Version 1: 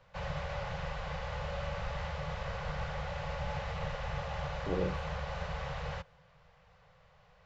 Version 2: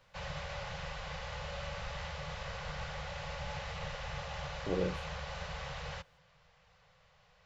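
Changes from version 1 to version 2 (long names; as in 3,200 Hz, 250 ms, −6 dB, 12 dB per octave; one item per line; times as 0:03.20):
background −5.0 dB
master: add high-shelf EQ 2,300 Hz +10.5 dB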